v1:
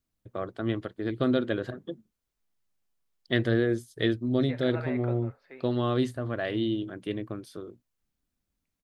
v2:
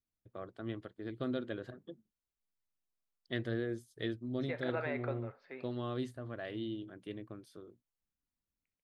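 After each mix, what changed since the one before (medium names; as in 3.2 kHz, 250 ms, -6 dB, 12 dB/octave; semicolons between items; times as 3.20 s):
first voice -11.5 dB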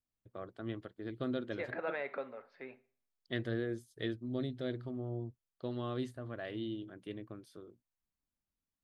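second voice: entry -2.90 s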